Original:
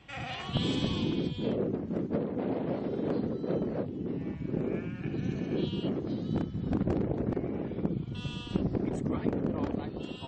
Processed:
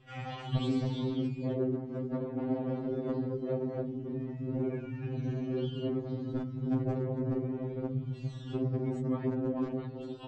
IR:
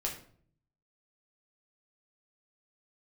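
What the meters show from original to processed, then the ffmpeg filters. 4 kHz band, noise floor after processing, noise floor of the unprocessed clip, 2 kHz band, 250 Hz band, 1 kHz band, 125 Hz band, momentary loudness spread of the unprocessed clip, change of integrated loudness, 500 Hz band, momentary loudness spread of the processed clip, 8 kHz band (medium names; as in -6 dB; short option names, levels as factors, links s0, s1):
-8.5 dB, -43 dBFS, -41 dBFS, -6.5 dB, -2.0 dB, -3.0 dB, 0.0 dB, 5 LU, -1.5 dB, -1.5 dB, 6 LU, no reading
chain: -filter_complex "[0:a]asplit=2[s0][s1];[s1]adynamicsmooth=sensitivity=0.5:basefreq=2000,volume=1[s2];[s0][s2]amix=inputs=2:normalize=0,afftfilt=real='re*2.45*eq(mod(b,6),0)':imag='im*2.45*eq(mod(b,6),0)':win_size=2048:overlap=0.75,volume=0.562"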